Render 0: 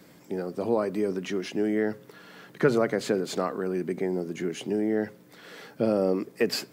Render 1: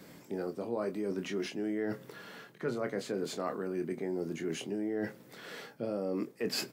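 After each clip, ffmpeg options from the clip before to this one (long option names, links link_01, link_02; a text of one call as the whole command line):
ffmpeg -i in.wav -filter_complex "[0:a]areverse,acompressor=threshold=-32dB:ratio=6,areverse,asplit=2[link_01][link_02];[link_02]adelay=25,volume=-8dB[link_03];[link_01][link_03]amix=inputs=2:normalize=0" out.wav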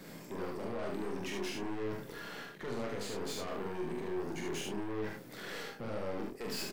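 ffmpeg -i in.wav -filter_complex "[0:a]alimiter=level_in=3.5dB:limit=-24dB:level=0:latency=1,volume=-3.5dB,aeval=exprs='(tanh(126*val(0)+0.45)-tanh(0.45))/126':channel_layout=same,asplit=2[link_01][link_02];[link_02]aecho=0:1:44|74:0.596|0.668[link_03];[link_01][link_03]amix=inputs=2:normalize=0,volume=3.5dB" out.wav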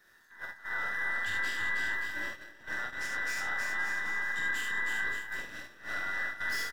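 ffmpeg -i in.wav -af "afftfilt=real='real(if(between(b,1,1012),(2*floor((b-1)/92)+1)*92-b,b),0)':imag='imag(if(between(b,1,1012),(2*floor((b-1)/92)+1)*92-b,b),0)*if(between(b,1,1012),-1,1)':win_size=2048:overlap=0.75,aecho=1:1:320|576|780.8|944.6|1076:0.631|0.398|0.251|0.158|0.1,agate=range=-14dB:threshold=-35dB:ratio=16:detection=peak" out.wav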